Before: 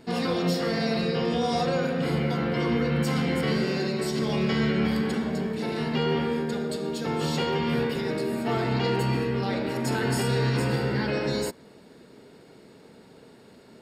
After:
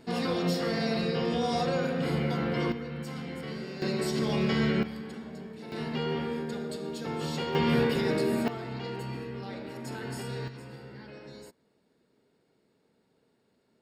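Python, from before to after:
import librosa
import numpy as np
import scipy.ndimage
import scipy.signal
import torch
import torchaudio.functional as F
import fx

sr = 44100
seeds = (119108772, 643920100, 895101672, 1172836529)

y = fx.gain(x, sr, db=fx.steps((0.0, -3.0), (2.72, -12.5), (3.82, -2.0), (4.83, -13.5), (5.72, -6.0), (7.55, 1.0), (8.48, -11.5), (10.48, -19.5)))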